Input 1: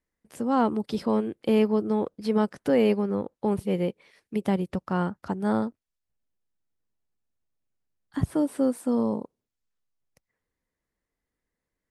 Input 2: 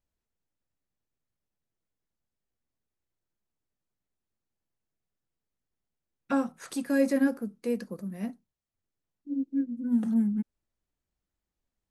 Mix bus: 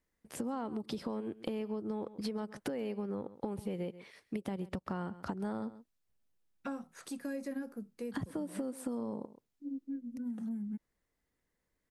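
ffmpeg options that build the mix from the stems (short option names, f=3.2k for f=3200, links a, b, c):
-filter_complex "[0:a]acompressor=threshold=-28dB:ratio=6,volume=1.5dB,asplit=2[a][b];[b]volume=-20dB[c];[1:a]acompressor=threshold=-28dB:ratio=2,adelay=350,volume=-7.5dB[d];[c]aecho=0:1:132:1[e];[a][d][e]amix=inputs=3:normalize=0,acompressor=threshold=-35dB:ratio=5"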